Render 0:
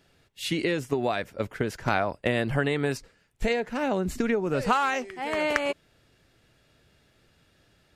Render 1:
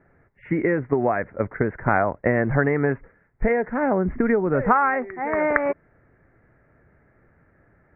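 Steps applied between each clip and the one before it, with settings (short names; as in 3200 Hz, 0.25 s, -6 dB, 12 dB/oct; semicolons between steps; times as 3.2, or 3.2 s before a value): steep low-pass 2100 Hz 72 dB/oct; gain +5.5 dB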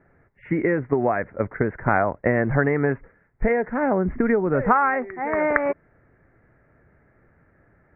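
nothing audible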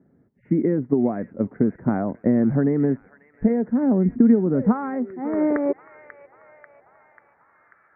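thin delay 0.54 s, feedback 39%, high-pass 2300 Hz, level -6 dB; band-pass sweep 230 Hz -> 1300 Hz, 5.06–7.85; gain +8.5 dB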